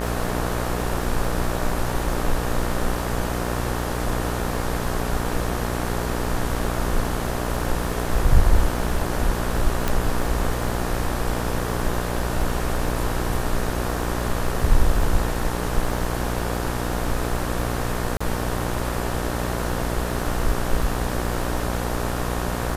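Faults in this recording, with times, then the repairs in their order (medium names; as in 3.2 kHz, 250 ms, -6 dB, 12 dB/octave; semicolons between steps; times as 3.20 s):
buzz 60 Hz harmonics 31 -27 dBFS
crackle 33 per s -31 dBFS
9.88 s: pop
18.17–18.20 s: dropout 35 ms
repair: de-click; de-hum 60 Hz, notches 31; interpolate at 18.17 s, 35 ms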